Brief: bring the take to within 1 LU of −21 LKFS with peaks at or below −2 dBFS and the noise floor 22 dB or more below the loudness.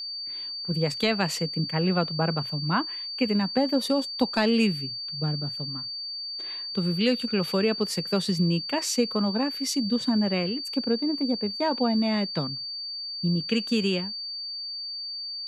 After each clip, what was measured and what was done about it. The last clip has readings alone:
interfering tone 4,600 Hz; level of the tone −32 dBFS; integrated loudness −26.5 LKFS; sample peak −11.0 dBFS; target loudness −21.0 LKFS
→ notch filter 4,600 Hz, Q 30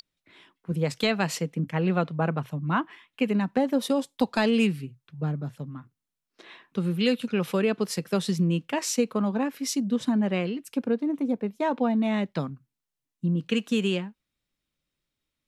interfering tone none found; integrated loudness −27.0 LKFS; sample peak −12.0 dBFS; target loudness −21.0 LKFS
→ level +6 dB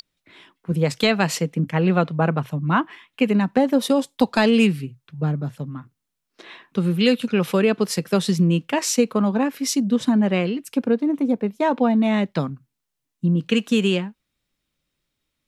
integrated loudness −21.0 LKFS; sample peak −6.0 dBFS; background noise floor −80 dBFS

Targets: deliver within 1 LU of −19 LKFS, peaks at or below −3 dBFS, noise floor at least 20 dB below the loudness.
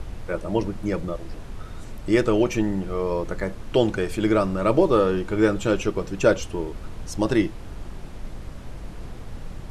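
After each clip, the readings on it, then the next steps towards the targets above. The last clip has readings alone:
background noise floor −38 dBFS; target noise floor −44 dBFS; integrated loudness −23.5 LKFS; sample peak −5.0 dBFS; target loudness −19.0 LKFS
→ noise reduction from a noise print 6 dB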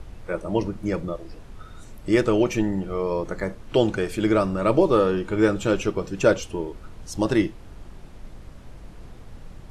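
background noise floor −43 dBFS; target noise floor −44 dBFS
→ noise reduction from a noise print 6 dB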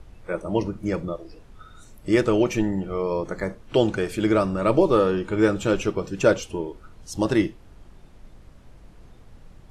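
background noise floor −49 dBFS; integrated loudness −23.5 LKFS; sample peak −5.5 dBFS; target loudness −19.0 LKFS
→ level +4.5 dB
brickwall limiter −3 dBFS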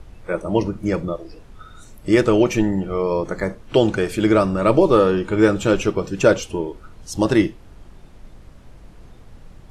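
integrated loudness −19.0 LKFS; sample peak −3.0 dBFS; background noise floor −44 dBFS

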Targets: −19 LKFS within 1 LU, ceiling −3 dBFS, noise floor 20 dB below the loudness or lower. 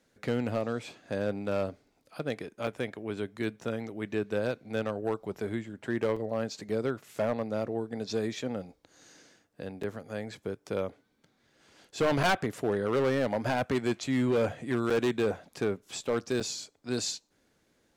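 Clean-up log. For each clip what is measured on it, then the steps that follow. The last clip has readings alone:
share of clipped samples 1.6%; peaks flattened at −21.5 dBFS; number of dropouts 7; longest dropout 4.9 ms; integrated loudness −32.0 LKFS; sample peak −21.5 dBFS; target loudness −19.0 LKFS
→ clipped peaks rebuilt −21.5 dBFS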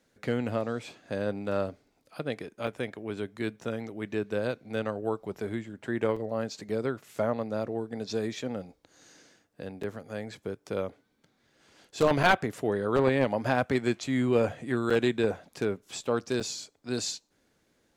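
share of clipped samples 0.0%; number of dropouts 7; longest dropout 4.9 ms
→ repair the gap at 0:02.67/0:06.16/0:06.69/0:09.83/0:12.23/0:14.90/0:16.40, 4.9 ms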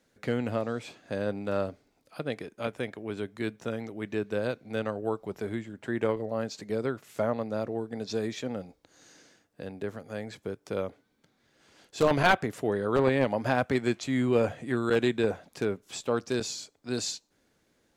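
number of dropouts 0; integrated loudness −30.5 LKFS; sample peak −12.5 dBFS; target loudness −19.0 LKFS
→ level +11.5 dB
brickwall limiter −3 dBFS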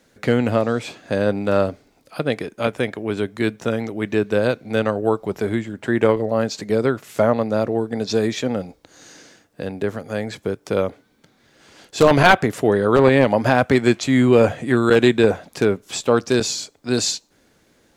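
integrated loudness −19.5 LKFS; sample peak −3.0 dBFS; background noise floor −60 dBFS

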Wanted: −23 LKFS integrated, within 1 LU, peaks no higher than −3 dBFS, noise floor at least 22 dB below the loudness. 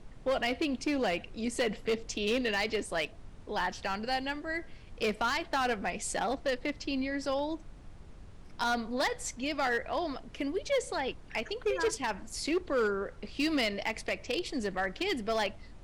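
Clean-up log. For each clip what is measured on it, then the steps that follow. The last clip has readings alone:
share of clipped samples 1.1%; peaks flattened at −24.0 dBFS; background noise floor −50 dBFS; target noise floor −55 dBFS; integrated loudness −32.5 LKFS; sample peak −24.0 dBFS; target loudness −23.0 LKFS
→ clipped peaks rebuilt −24 dBFS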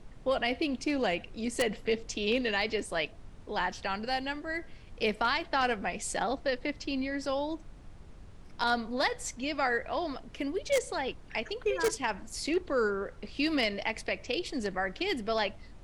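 share of clipped samples 0.0%; background noise floor −50 dBFS; target noise floor −54 dBFS
→ noise reduction from a noise print 6 dB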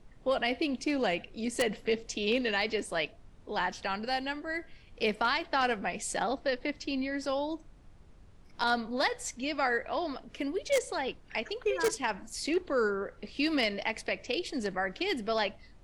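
background noise floor −56 dBFS; integrated loudness −32.0 LKFS; sample peak −15.0 dBFS; target loudness −23.0 LKFS
→ level +9 dB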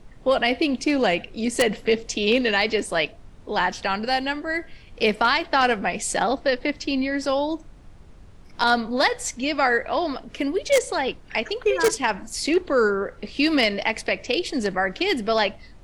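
integrated loudness −23.0 LKFS; sample peak −6.0 dBFS; background noise floor −47 dBFS

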